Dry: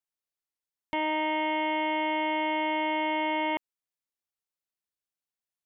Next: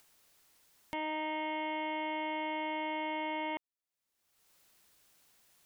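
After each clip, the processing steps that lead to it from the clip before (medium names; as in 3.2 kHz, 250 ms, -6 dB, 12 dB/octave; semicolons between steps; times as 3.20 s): upward compressor, threshold -33 dBFS; trim -8 dB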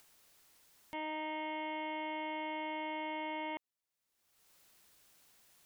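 peak limiter -33.5 dBFS, peak gain reduction 9 dB; trim +1 dB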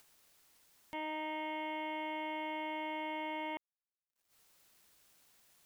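bit crusher 12-bit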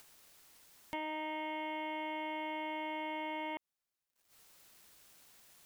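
compression, threshold -42 dBFS, peak gain reduction 5.5 dB; trim +5.5 dB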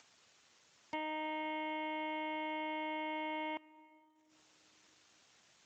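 on a send at -20.5 dB: reverberation RT60 3.0 s, pre-delay 4 ms; on the sum: Speex 17 kbps 16 kHz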